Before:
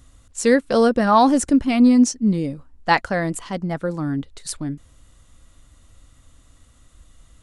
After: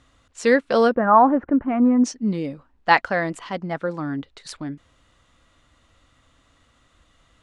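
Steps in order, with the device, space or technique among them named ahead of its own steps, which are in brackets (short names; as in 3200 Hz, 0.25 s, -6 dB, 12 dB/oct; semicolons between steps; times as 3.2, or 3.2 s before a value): phone in a pocket (LPF 3400 Hz 12 dB/oct; high shelf 2000 Hz -9 dB); 0.95–2.04 LPF 1600 Hz 24 dB/oct; tilt +3.5 dB/oct; gain +3.5 dB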